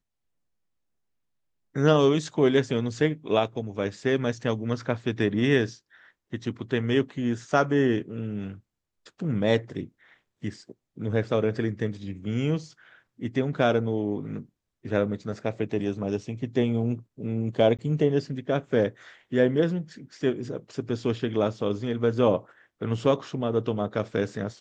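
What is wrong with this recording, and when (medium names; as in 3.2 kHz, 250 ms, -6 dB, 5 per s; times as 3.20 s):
17.77–17.79 s: dropout 17 ms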